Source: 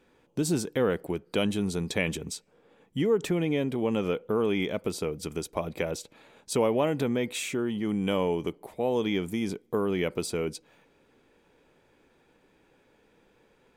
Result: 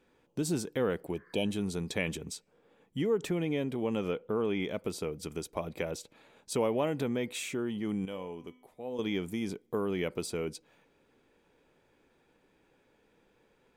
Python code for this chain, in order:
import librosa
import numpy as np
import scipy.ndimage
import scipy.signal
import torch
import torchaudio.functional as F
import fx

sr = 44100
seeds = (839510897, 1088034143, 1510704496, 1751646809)

y = fx.spec_repair(x, sr, seeds[0], start_s=1.17, length_s=0.28, low_hz=990.0, high_hz=2200.0, source='after')
y = fx.high_shelf(y, sr, hz=fx.line((4.1, 9500.0), (4.64, 6000.0)), db=-9.5, at=(4.1, 4.64), fade=0.02)
y = fx.comb_fb(y, sr, f0_hz=250.0, decay_s=0.71, harmonics='all', damping=0.0, mix_pct=70, at=(8.05, 8.99))
y = y * 10.0 ** (-4.5 / 20.0)